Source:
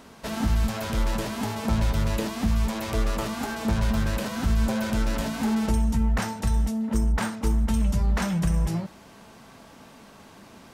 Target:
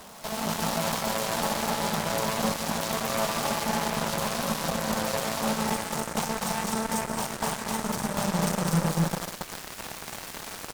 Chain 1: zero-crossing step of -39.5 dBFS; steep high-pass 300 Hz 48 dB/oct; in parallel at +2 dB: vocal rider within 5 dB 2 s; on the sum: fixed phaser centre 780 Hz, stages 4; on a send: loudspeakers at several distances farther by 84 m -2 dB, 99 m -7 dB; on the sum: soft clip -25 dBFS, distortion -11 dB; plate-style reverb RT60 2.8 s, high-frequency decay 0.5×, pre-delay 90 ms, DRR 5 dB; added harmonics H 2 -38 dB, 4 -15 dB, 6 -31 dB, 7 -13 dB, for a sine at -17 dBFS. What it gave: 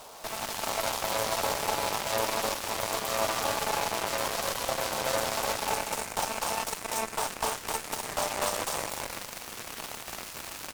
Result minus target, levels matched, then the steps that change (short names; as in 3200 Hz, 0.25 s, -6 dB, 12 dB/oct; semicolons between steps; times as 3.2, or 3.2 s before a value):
125 Hz band -11.5 dB
change: steep high-pass 150 Hz 48 dB/oct